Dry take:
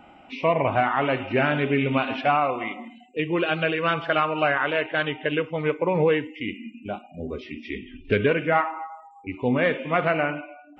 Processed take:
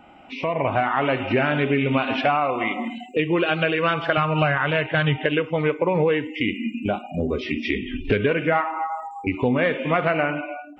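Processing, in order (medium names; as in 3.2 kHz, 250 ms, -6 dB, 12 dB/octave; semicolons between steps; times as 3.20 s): compression 3:1, threshold -36 dBFS, peak gain reduction 14.5 dB; 4.17–5.18 s: resonant low shelf 210 Hz +10 dB, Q 1.5; level rider gain up to 14 dB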